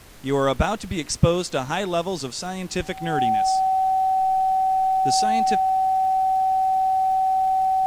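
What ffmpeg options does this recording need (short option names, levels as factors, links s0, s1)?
-af "adeclick=t=4,bandreject=f=760:w=30,agate=range=0.0891:threshold=0.0447"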